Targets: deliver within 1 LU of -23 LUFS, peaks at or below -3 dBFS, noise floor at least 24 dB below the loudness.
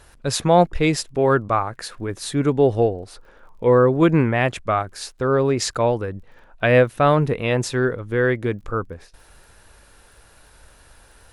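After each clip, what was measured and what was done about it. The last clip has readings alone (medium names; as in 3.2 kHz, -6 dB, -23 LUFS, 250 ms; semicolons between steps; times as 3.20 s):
tick rate 24 per s; loudness -20.0 LUFS; peak level -4.0 dBFS; loudness target -23.0 LUFS
-> de-click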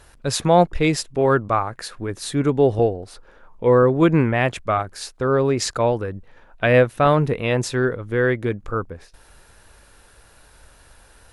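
tick rate 0 per s; loudness -20.0 LUFS; peak level -4.0 dBFS; loudness target -23.0 LUFS
-> trim -3 dB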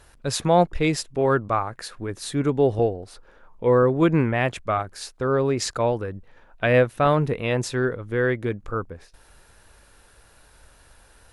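loudness -23.0 LUFS; peak level -7.0 dBFS; noise floor -55 dBFS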